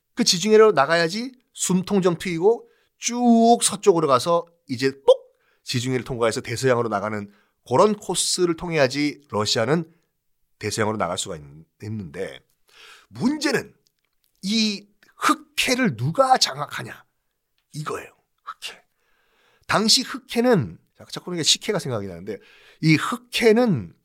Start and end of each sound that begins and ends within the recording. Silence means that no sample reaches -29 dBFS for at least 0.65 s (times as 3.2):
10.61–12.36
13.16–13.62
14.44–16.92
17.75–18.7